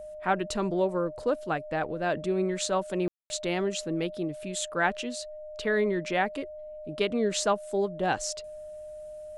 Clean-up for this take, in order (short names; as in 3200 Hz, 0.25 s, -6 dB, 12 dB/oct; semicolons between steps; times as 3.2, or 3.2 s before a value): notch 610 Hz, Q 30; room tone fill 3.08–3.3